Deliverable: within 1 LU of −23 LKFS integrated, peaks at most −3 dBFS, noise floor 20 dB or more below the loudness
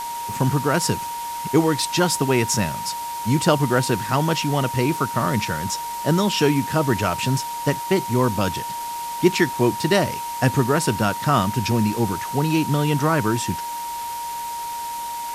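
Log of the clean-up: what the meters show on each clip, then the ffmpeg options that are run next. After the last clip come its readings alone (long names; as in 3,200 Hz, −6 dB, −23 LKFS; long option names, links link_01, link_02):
interfering tone 940 Hz; level of the tone −27 dBFS; background noise floor −29 dBFS; target noise floor −42 dBFS; integrated loudness −21.5 LKFS; sample peak −3.5 dBFS; target loudness −23.0 LKFS
→ -af "bandreject=frequency=940:width=30"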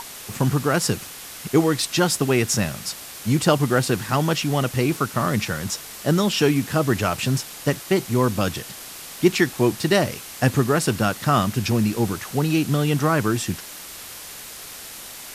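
interfering tone none found; background noise floor −38 dBFS; target noise floor −42 dBFS
→ -af "afftdn=noise_reduction=6:noise_floor=-38"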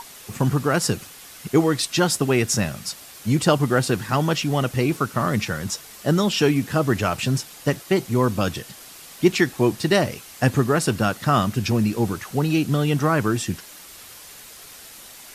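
background noise floor −43 dBFS; integrated loudness −22.0 LKFS; sample peak −4.0 dBFS; target loudness −23.0 LKFS
→ -af "volume=-1dB"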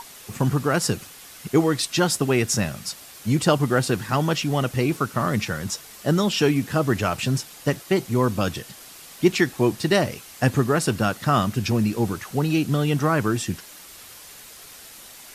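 integrated loudness −23.0 LKFS; sample peak −5.0 dBFS; background noise floor −44 dBFS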